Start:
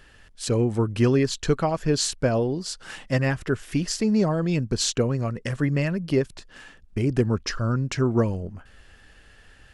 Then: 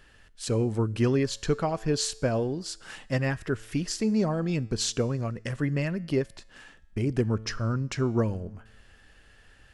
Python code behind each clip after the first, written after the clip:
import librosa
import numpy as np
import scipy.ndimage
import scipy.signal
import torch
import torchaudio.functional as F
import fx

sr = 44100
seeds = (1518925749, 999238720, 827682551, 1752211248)

y = fx.comb_fb(x, sr, f0_hz=110.0, decay_s=0.95, harmonics='all', damping=0.0, mix_pct=40)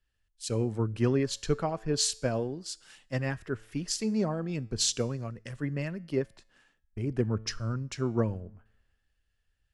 y = fx.band_widen(x, sr, depth_pct=70)
y = F.gain(torch.from_numpy(y), -4.0).numpy()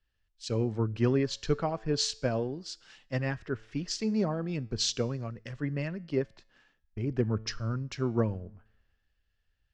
y = scipy.signal.sosfilt(scipy.signal.butter(4, 6000.0, 'lowpass', fs=sr, output='sos'), x)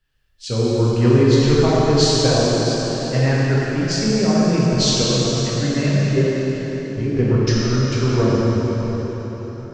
y = fx.rev_plate(x, sr, seeds[0], rt60_s=4.8, hf_ratio=0.8, predelay_ms=0, drr_db=-7.5)
y = F.gain(torch.from_numpy(y), 6.0).numpy()